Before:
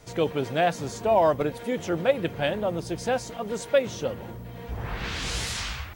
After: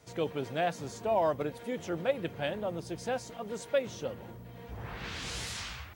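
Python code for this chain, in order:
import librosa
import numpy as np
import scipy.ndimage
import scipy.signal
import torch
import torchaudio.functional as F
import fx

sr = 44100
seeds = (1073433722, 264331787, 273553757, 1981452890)

y = scipy.signal.sosfilt(scipy.signal.butter(2, 63.0, 'highpass', fs=sr, output='sos'), x)
y = F.gain(torch.from_numpy(y), -7.5).numpy()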